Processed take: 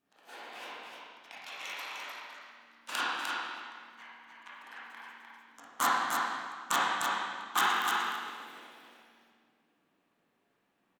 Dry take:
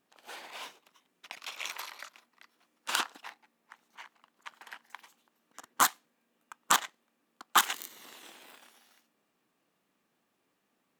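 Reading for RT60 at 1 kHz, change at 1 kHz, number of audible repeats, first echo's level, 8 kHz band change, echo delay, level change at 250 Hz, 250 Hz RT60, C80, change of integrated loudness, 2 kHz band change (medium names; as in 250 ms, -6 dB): 1.6 s, +2.0 dB, 1, -4.0 dB, -6.0 dB, 302 ms, +3.5 dB, 1.6 s, -2.5 dB, -1.5 dB, +2.5 dB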